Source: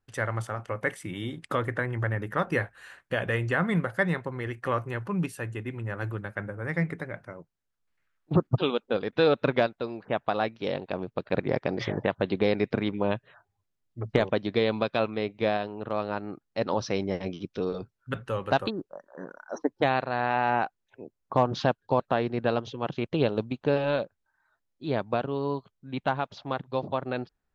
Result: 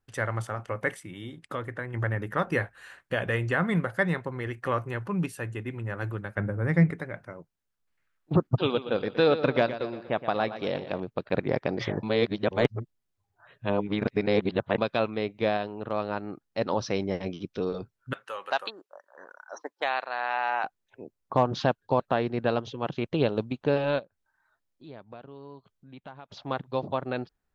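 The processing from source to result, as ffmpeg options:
ffmpeg -i in.wav -filter_complex "[0:a]asettb=1/sr,asplit=3[link_01][link_02][link_03];[link_01]atrim=end=6.374[link_04];[link_02]atrim=start=6.37:end=6.91,asetpts=PTS-STARTPTS,afade=type=in:duration=0.004:curve=qsin,afade=type=out:start_time=0.536:duration=0.004:curve=qsin,lowshelf=frequency=410:gain=9[link_05];[link_03]atrim=start=6.906[link_06];[link_04][link_05]acrossfade=duration=0.004:curve1=hsin:curve2=qsin[link_07];[link_07][link_06]acrossfade=duration=0.004:curve1=qsin:curve2=hsin,asettb=1/sr,asplit=3[link_08][link_09][link_10];[link_08]atrim=end=8.484[link_11];[link_09]atrim=start=8.48:end=11,asetpts=PTS-STARTPTS,afade=type=in:duration=0.004:curve=qsin,afade=type=out:start_time=2.516:duration=0.004:curve=qsin,aecho=1:1:119|238|357|476|595:0.251|0.121|0.0579|0.0278|0.0133,atrim=end_sample=111132[link_12];[link_10]atrim=start=10.996[link_13];[link_11][link_12]acrossfade=duration=0.004:curve1=hsin:curve2=qsin[link_14];[link_14][link_13]acrossfade=duration=0.004:curve1=qsin:curve2=hsin,asettb=1/sr,asplit=3[link_15][link_16][link_17];[link_15]atrim=end=18.134[link_18];[link_16]atrim=start=18.13:end=20.64,asetpts=PTS-STARTPTS,afade=type=in:duration=0.004:curve=qsin,afade=type=out:start_time=2.506:duration=0.004:curve=qsin,highpass=790[link_19];[link_17]atrim=start=20.636[link_20];[link_18][link_19]acrossfade=duration=0.004:curve1=hsin:curve2=qsin[link_21];[link_21][link_20]acrossfade=duration=0.004:curve1=qsin:curve2=hsin,asplit=3[link_22][link_23][link_24];[link_22]afade=type=out:start_time=23.98:duration=0.02[link_25];[link_23]acompressor=threshold=-54dB:ratio=2:attack=3.2:release=140:knee=1:detection=peak,afade=type=in:start_time=23.98:duration=0.02,afade=type=out:start_time=26.28:duration=0.02[link_26];[link_24]afade=type=in:start_time=26.28:duration=0.02[link_27];[link_25][link_26][link_27]amix=inputs=3:normalize=0,asplit=5[link_28][link_29][link_30][link_31][link_32];[link_28]atrim=end=1.002[link_33];[link_29]atrim=start=0.998:end=1.942,asetpts=PTS-STARTPTS,volume=-6dB[link_34];[link_30]atrim=start=1.938:end=12.032[link_35];[link_31]atrim=start=12.028:end=14.782,asetpts=PTS-STARTPTS,areverse[link_36];[link_32]atrim=start=14.778[link_37];[link_33][link_34]acrossfade=duration=0.004:curve1=hsin:curve2=hsin[link_38];[link_38][link_35]acrossfade=duration=0.004:curve1=hsin:curve2=hsin[link_39];[link_39][link_36]acrossfade=duration=0.004:curve1=hsin:curve2=hsin[link_40];[link_40][link_37]acrossfade=duration=0.004:curve1=hsin:curve2=hsin" out.wav

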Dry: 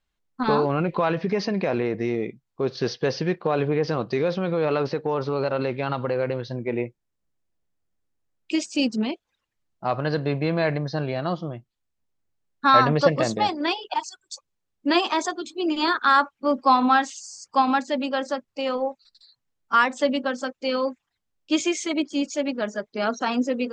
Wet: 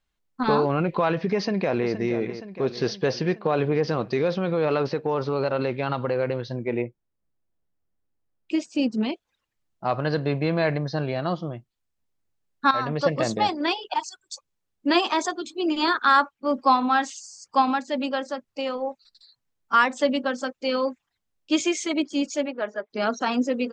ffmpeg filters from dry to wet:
ffmpeg -i in.wav -filter_complex "[0:a]asplit=2[link_01][link_02];[link_02]afade=type=in:start_time=1.35:duration=0.01,afade=type=out:start_time=1.93:duration=0.01,aecho=0:1:470|940|1410|1880|2350|2820|3290|3760:0.281838|0.183195|0.119077|0.0773998|0.0503099|0.0327014|0.0212559|0.0138164[link_03];[link_01][link_03]amix=inputs=2:normalize=0,asettb=1/sr,asplit=3[link_04][link_05][link_06];[link_04]atrim=end=6.824[link_07];[link_05]atrim=start=6.82:end=8.97,asetpts=PTS-STARTPTS,afade=type=in:duration=0.004:curve=qsin,afade=type=out:start_time=2.146:duration=0.004:curve=qsin,highshelf=frequency=2400:gain=-11[link_08];[link_06]atrim=start=8.966[link_09];[link_07][link_08]acrossfade=duration=0.004:curve1=hsin:curve2=qsin[link_10];[link_10][link_09]acrossfade=duration=0.004:curve1=qsin:curve2=hsin,asettb=1/sr,asplit=3[link_11][link_12][link_13];[link_11]atrim=end=16.154[link_14];[link_12]atrim=start=16.15:end=18.88,asetpts=PTS-STARTPTS,afade=type=in:duration=0.004:curve=qsin,afade=type=out:start_time=2.726:duration=0.004:curve=qsin,tremolo=f=2.1:d=0.37[link_15];[link_13]atrim=start=18.876[link_16];[link_14][link_15]acrossfade=duration=0.004:curve1=hsin:curve2=qsin[link_17];[link_17][link_16]acrossfade=duration=0.004:curve1=qsin:curve2=hsin,asplit=3[link_18][link_19][link_20];[link_18]afade=type=out:start_time=22.45:duration=0.02[link_21];[link_19]highpass=380,lowpass=2500,afade=type=in:start_time=22.45:duration=0.02,afade=type=out:start_time=22.89:duration=0.02[link_22];[link_20]afade=type=in:start_time=22.89:duration=0.02[link_23];[link_21][link_22][link_23]amix=inputs=3:normalize=0,asplit=2[link_24][link_25];[link_24]atrim=end=12.71,asetpts=PTS-STARTPTS,afade=type=out:start_time=12.706:duration=0.004:curve=hsin:silence=0.223872[link_26];[link_25]atrim=start=12.71,asetpts=PTS-STARTPTS,afade=type=in:duration=0.65:silence=0.223872[link_27];[link_26][link_27]concat=n=2:v=0:a=1" out.wav

